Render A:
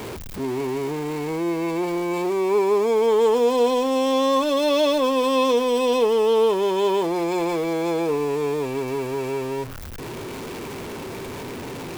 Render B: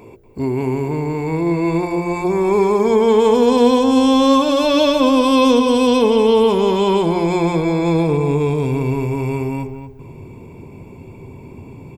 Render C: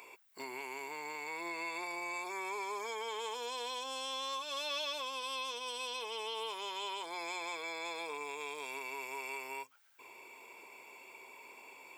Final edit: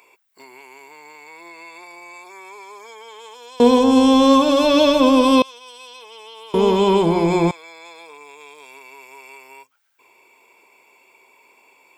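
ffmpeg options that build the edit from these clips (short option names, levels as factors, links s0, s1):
-filter_complex "[1:a]asplit=2[s0][s1];[2:a]asplit=3[s2][s3][s4];[s2]atrim=end=3.602[s5];[s0]atrim=start=3.598:end=5.422[s6];[s3]atrim=start=5.418:end=6.542[s7];[s1]atrim=start=6.538:end=7.512[s8];[s4]atrim=start=7.508[s9];[s5][s6]acrossfade=d=0.004:c1=hsin:c2=hsin[s10];[s10][s7]acrossfade=d=0.004:c1=hsin:c2=hsin[s11];[s11][s8]acrossfade=d=0.004:c1=hsin:c2=hsin[s12];[s12][s9]acrossfade=d=0.004:c1=hsin:c2=hsin"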